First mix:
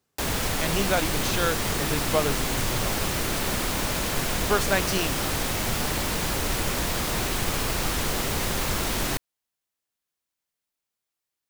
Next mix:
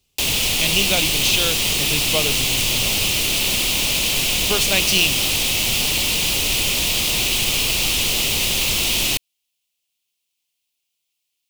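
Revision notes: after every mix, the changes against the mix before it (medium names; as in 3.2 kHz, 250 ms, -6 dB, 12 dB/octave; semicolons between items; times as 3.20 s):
speech: remove Bessel high-pass 180 Hz; master: add resonant high shelf 2.1 kHz +9 dB, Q 3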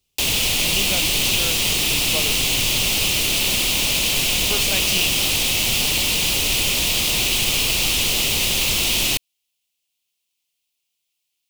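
speech -6.5 dB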